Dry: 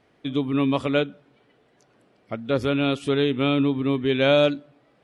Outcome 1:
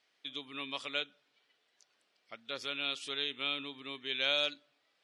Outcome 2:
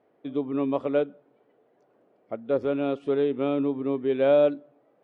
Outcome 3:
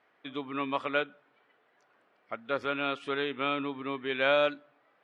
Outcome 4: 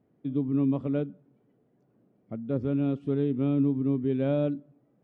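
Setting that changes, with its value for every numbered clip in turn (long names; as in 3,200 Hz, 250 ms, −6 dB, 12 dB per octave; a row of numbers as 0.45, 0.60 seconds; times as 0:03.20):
resonant band-pass, frequency: 5,000, 520, 1,400, 180 Hertz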